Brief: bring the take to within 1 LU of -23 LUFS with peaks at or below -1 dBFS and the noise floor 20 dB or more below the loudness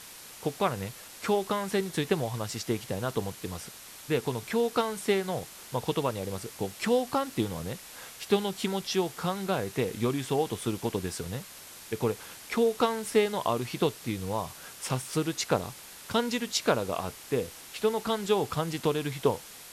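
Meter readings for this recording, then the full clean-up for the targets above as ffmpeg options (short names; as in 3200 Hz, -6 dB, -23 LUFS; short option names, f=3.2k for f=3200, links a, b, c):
noise floor -47 dBFS; noise floor target -51 dBFS; loudness -30.5 LUFS; peak -11.5 dBFS; loudness target -23.0 LUFS
-> -af "afftdn=nr=6:nf=-47"
-af "volume=7.5dB"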